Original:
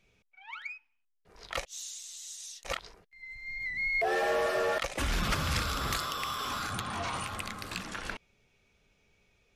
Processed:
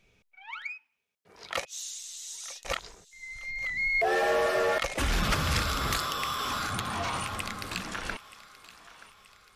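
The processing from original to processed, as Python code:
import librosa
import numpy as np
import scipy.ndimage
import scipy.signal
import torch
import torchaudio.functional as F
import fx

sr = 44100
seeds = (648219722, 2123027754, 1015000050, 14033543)

p1 = fx.highpass(x, sr, hz=120.0, slope=12, at=(0.67, 1.83))
p2 = p1 + fx.echo_thinned(p1, sr, ms=928, feedback_pct=53, hz=550.0, wet_db=-17.0, dry=0)
y = p2 * 10.0 ** (3.0 / 20.0)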